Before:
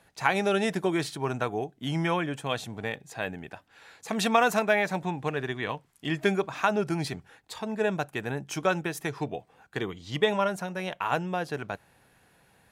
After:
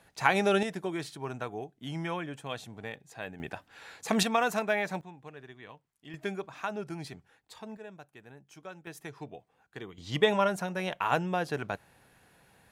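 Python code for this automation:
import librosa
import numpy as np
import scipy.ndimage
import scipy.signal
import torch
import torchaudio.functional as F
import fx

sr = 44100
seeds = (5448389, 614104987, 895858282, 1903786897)

y = fx.gain(x, sr, db=fx.steps((0.0, 0.0), (0.63, -7.5), (3.4, 3.0), (4.23, -5.0), (5.01, -17.0), (6.14, -10.0), (7.77, -19.5), (8.87, -11.0), (9.98, 0.0)))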